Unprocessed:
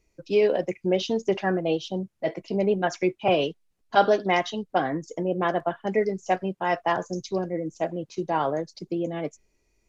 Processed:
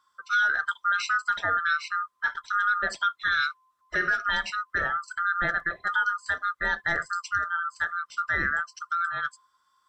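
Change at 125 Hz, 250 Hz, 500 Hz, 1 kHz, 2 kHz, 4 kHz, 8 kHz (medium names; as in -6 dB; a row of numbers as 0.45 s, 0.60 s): -12.5 dB, -18.5 dB, -19.0 dB, 0.0 dB, +10.5 dB, -0.5 dB, no reading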